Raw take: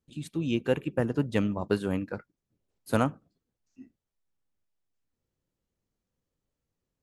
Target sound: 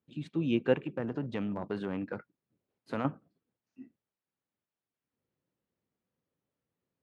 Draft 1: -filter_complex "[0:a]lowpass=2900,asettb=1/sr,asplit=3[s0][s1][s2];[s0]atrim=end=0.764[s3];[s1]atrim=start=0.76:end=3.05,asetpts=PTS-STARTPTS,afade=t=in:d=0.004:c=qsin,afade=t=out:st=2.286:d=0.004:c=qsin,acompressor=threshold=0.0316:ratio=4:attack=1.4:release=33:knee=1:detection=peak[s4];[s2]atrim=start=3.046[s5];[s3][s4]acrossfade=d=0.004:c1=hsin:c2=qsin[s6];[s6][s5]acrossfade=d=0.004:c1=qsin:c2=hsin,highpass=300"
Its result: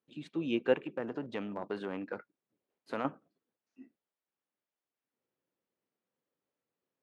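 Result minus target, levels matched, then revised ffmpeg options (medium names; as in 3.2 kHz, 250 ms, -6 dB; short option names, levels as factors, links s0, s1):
125 Hz band -8.0 dB
-filter_complex "[0:a]lowpass=2900,asettb=1/sr,asplit=3[s0][s1][s2];[s0]atrim=end=0.764[s3];[s1]atrim=start=0.76:end=3.05,asetpts=PTS-STARTPTS,afade=t=in:d=0.004:c=qsin,afade=t=out:st=2.286:d=0.004:c=qsin,acompressor=threshold=0.0316:ratio=4:attack=1.4:release=33:knee=1:detection=peak[s4];[s2]atrim=start=3.046[s5];[s3][s4]acrossfade=d=0.004:c1=hsin:c2=qsin[s6];[s6][s5]acrossfade=d=0.004:c1=qsin:c2=hsin,highpass=130"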